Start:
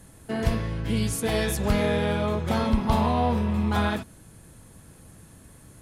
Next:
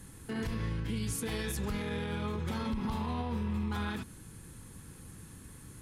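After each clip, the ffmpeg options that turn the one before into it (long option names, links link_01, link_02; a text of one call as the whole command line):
ffmpeg -i in.wav -af "equalizer=frequency=640:width_type=o:width=0.44:gain=-13,acompressor=threshold=-29dB:ratio=1.5,alimiter=level_in=2.5dB:limit=-24dB:level=0:latency=1:release=75,volume=-2.5dB" out.wav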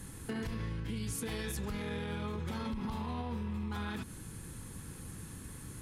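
ffmpeg -i in.wav -af "acompressor=threshold=-38dB:ratio=6,volume=3.5dB" out.wav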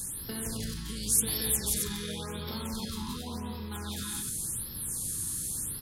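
ffmpeg -i in.wav -filter_complex "[0:a]aexciter=amount=3.6:drive=8.6:freq=3500,asplit=2[link_01][link_02];[link_02]aecho=0:1:174.9|268.2:0.708|0.562[link_03];[link_01][link_03]amix=inputs=2:normalize=0,afftfilt=real='re*(1-between(b*sr/1024,560*pow(8000/560,0.5+0.5*sin(2*PI*0.9*pts/sr))/1.41,560*pow(8000/560,0.5+0.5*sin(2*PI*0.9*pts/sr))*1.41))':imag='im*(1-between(b*sr/1024,560*pow(8000/560,0.5+0.5*sin(2*PI*0.9*pts/sr))/1.41,560*pow(8000/560,0.5+0.5*sin(2*PI*0.9*pts/sr))*1.41))':win_size=1024:overlap=0.75,volume=-1.5dB" out.wav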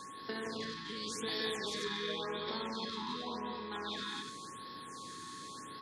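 ffmpeg -i in.wav -af "highpass=280,equalizer=frequency=280:width_type=q:width=4:gain=4,equalizer=frequency=420:width_type=q:width=4:gain=5,equalizer=frequency=630:width_type=q:width=4:gain=4,equalizer=frequency=970:width_type=q:width=4:gain=4,equalizer=frequency=1800:width_type=q:width=4:gain=9,equalizer=frequency=2900:width_type=q:width=4:gain=-9,lowpass=frequency=4000:width=0.5412,lowpass=frequency=4000:width=1.3066,aeval=exprs='val(0)+0.00562*sin(2*PI*1100*n/s)':channel_layout=same,aexciter=amount=2.2:drive=5.2:freq=2600,volume=-2dB" out.wav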